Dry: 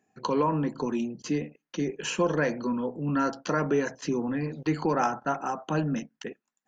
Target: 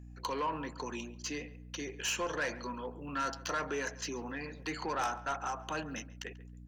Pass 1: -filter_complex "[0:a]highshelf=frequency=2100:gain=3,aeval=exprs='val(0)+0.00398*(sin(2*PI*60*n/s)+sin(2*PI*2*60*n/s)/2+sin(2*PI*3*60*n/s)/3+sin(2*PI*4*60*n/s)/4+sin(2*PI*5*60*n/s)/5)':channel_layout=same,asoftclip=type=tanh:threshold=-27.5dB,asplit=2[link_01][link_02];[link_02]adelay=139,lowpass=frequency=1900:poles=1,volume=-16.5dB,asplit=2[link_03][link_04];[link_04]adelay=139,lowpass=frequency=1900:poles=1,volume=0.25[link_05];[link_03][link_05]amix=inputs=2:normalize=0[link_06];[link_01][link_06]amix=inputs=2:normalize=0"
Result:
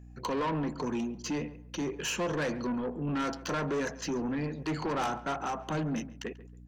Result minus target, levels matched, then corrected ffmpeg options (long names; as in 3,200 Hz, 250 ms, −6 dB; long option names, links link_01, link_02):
1,000 Hz band −2.5 dB
-filter_complex "[0:a]highpass=frequency=1300:poles=1,highshelf=frequency=2100:gain=3,aeval=exprs='val(0)+0.00398*(sin(2*PI*60*n/s)+sin(2*PI*2*60*n/s)/2+sin(2*PI*3*60*n/s)/3+sin(2*PI*4*60*n/s)/4+sin(2*PI*5*60*n/s)/5)':channel_layout=same,asoftclip=type=tanh:threshold=-27.5dB,asplit=2[link_01][link_02];[link_02]adelay=139,lowpass=frequency=1900:poles=1,volume=-16.5dB,asplit=2[link_03][link_04];[link_04]adelay=139,lowpass=frequency=1900:poles=1,volume=0.25[link_05];[link_03][link_05]amix=inputs=2:normalize=0[link_06];[link_01][link_06]amix=inputs=2:normalize=0"